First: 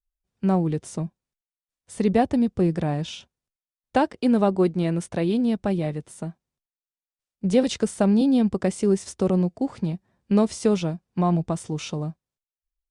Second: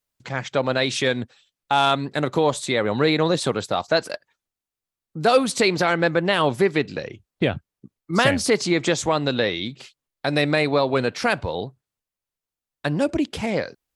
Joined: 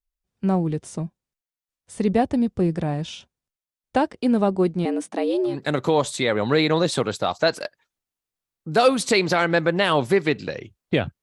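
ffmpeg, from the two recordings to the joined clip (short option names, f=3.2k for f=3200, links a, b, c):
-filter_complex "[0:a]asettb=1/sr,asplit=3[a][b][c];[a]atrim=end=4.854[d];[b]atrim=start=4.85:end=5.6,asetpts=PTS-STARTPTS,afade=t=in:d=0.004:c=qsin,afade=t=out:st=0.746:d=0.004:c=qsin,afreqshift=120[e];[c]atrim=start=5.596[f];[d][e]acrossfade=d=0.004:c1=hsin:c2=qsin[g];[g][f]acrossfade=d=0.004:c1=qsin:c2=hsin,apad=whole_dur=11.22,atrim=end=11.22,atrim=end=5.6,asetpts=PTS-STARTPTS[h];[1:a]atrim=start=1.93:end=7.71,asetpts=PTS-STARTPTS[i];[h][i]acrossfade=d=0.16:c1=tri:c2=tri"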